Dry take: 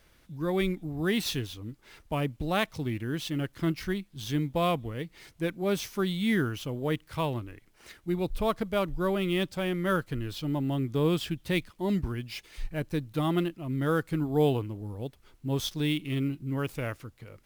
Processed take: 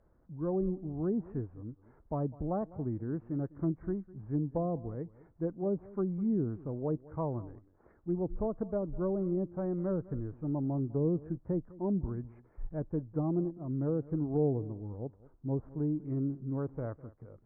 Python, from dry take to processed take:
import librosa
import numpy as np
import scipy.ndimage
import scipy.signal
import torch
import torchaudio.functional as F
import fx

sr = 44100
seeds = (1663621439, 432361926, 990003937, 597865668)

y = scipy.ndimage.gaussian_filter1d(x, 8.7, mode='constant')
y = fx.low_shelf(y, sr, hz=460.0, db=-4.0)
y = fx.cheby_harmonics(y, sr, harmonics=(5, 7), levels_db=(-33, -39), full_scale_db=-18.0)
y = fx.env_lowpass_down(y, sr, base_hz=530.0, full_db=-26.5)
y = y + 10.0 ** (-20.0 / 20.0) * np.pad(y, (int(203 * sr / 1000.0), 0))[:len(y)]